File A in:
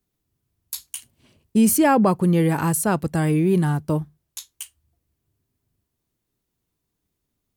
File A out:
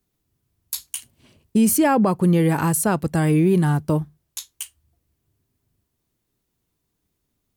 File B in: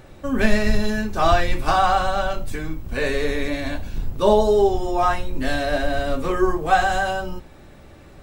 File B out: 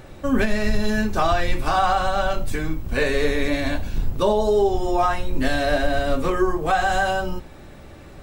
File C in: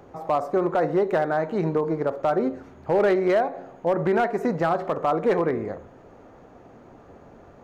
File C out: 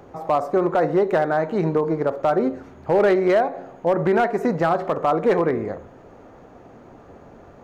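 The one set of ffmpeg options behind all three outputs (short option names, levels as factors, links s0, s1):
-af "alimiter=limit=0.237:level=0:latency=1:release=261,volume=1.41"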